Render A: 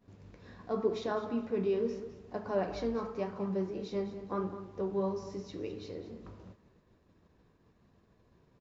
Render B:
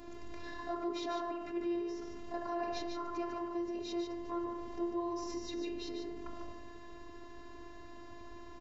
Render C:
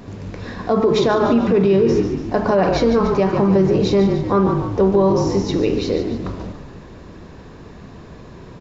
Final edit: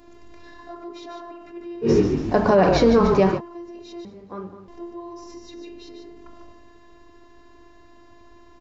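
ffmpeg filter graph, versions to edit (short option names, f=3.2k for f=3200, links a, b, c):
-filter_complex "[1:a]asplit=3[a][b][c];[a]atrim=end=1.91[d];[2:a]atrim=start=1.81:end=3.41[e];[b]atrim=start=3.31:end=4.052[f];[0:a]atrim=start=4.048:end=4.682[g];[c]atrim=start=4.678[h];[d][e]acrossfade=d=0.1:c1=tri:c2=tri[i];[i][f]acrossfade=d=0.1:c1=tri:c2=tri[j];[j][g]acrossfade=d=0.004:c1=hsin:c2=hsin[k];[k][h]acrossfade=d=0.004:c1=hsin:c2=hsin"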